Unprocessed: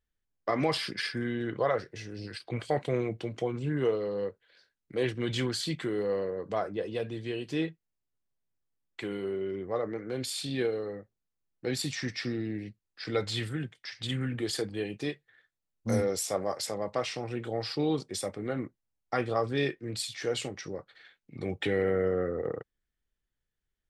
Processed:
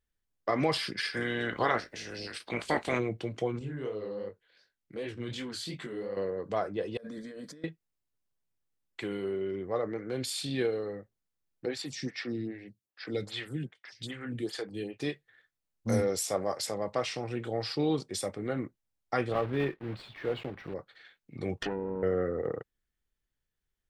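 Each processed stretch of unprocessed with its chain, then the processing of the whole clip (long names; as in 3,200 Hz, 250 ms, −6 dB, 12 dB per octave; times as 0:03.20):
0:01.12–0:02.98: ceiling on every frequency bin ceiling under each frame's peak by 18 dB + parametric band 130 Hz −6 dB 0.43 octaves + double-tracking delay 17 ms −12 dB
0:03.59–0:06.17: downward compressor 2 to 1, threshold −33 dBFS + chorus effect 2.7 Hz, delay 19 ms, depth 6.9 ms
0:06.97–0:07.64: phaser with its sweep stopped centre 550 Hz, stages 8 + compressor whose output falls as the input rises −45 dBFS
0:11.66–0:15.00: high-pass filter 89 Hz + phaser with staggered stages 2.5 Hz
0:19.32–0:20.75: one scale factor per block 3 bits + upward compression, threshold −37 dBFS + high-frequency loss of the air 470 metres
0:21.57–0:22.03: lower of the sound and its delayed copy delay 0.65 ms + treble cut that deepens with the level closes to 470 Hz, closed at −26 dBFS + low-shelf EQ 200 Hz −8 dB
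whole clip: no processing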